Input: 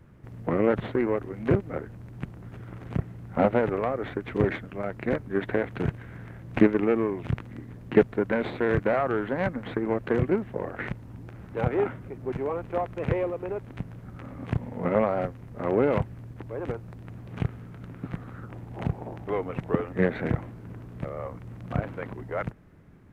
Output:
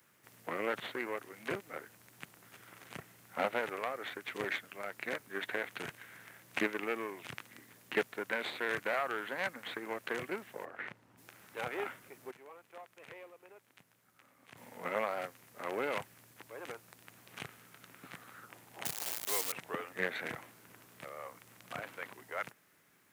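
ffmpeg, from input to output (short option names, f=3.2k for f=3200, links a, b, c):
-filter_complex "[0:a]asplit=3[a][b][c];[a]afade=t=out:st=10.64:d=0.02[d];[b]lowpass=f=1.2k:p=1,afade=t=in:st=10.64:d=0.02,afade=t=out:st=11.17:d=0.02[e];[c]afade=t=in:st=11.17:d=0.02[f];[d][e][f]amix=inputs=3:normalize=0,asettb=1/sr,asplit=3[g][h][i];[g]atrim=end=18.854[j];[h]atrim=start=18.85:end=19.52,asetpts=PTS-STARTPTS,afade=t=in:d=0.004:c=qsin,afade=t=out:st=0.666:d=0.004:c=qsin,acrusher=bits=7:dc=4:mix=0:aa=0.000001[k];[i]atrim=start=19.516[l];[j][k]acrossfade=d=0.004:c1=hsin:c2=qsin[m];[m][l]acrossfade=d=0.004:c1=qsin:c2=hsin,asplit=3[n][o][p];[n]atrim=end=12.312[q];[o]atrim=start=12.308:end=14.572,asetpts=PTS-STARTPTS,volume=-12dB[r];[p]atrim=start=14.568[s];[q][r]acrossfade=d=0.004:c1=hsin:c2=hsin[t];[t][s]acrossfade=d=0.004:c1=hsin:c2=hsin,highpass=83,aderivative,volume=10dB"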